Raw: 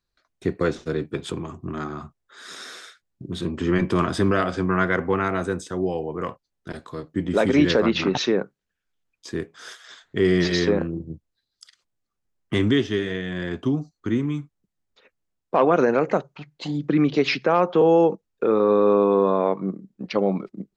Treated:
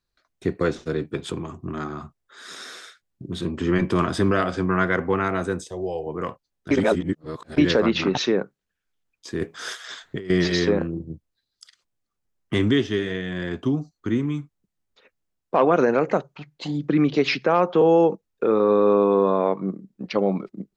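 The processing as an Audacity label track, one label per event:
5.640000	6.070000	fixed phaser centre 580 Hz, stages 4
6.710000	7.580000	reverse
9.410000	10.300000	negative-ratio compressor -30 dBFS

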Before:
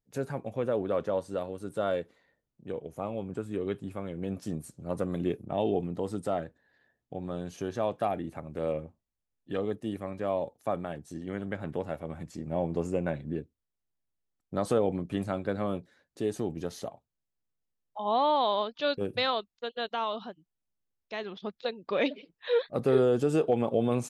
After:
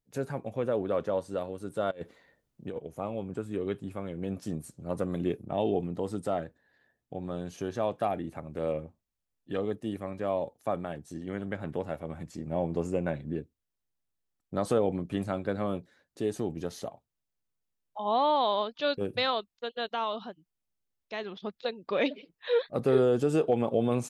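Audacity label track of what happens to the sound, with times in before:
1.910000	2.780000	negative-ratio compressor -37 dBFS, ratio -0.5

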